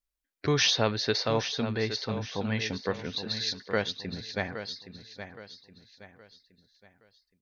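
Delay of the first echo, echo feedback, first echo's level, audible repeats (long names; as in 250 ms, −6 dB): 819 ms, 38%, −10.5 dB, 3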